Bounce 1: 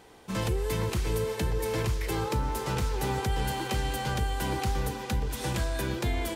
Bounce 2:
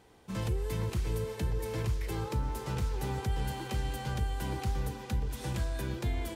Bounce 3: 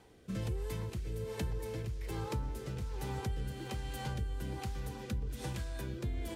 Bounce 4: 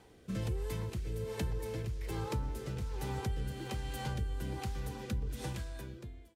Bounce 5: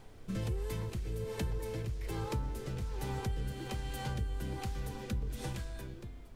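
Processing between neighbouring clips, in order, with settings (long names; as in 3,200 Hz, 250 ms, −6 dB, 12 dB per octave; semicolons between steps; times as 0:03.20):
parametric band 81 Hz +6.5 dB 2.9 octaves; level −8 dB
downward compressor 3 to 1, threshold −38 dBFS, peak gain reduction 9 dB; rotating-speaker cabinet horn 1.2 Hz; level +3 dB
fade-out on the ending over 0.97 s; level +1 dB
background noise brown −51 dBFS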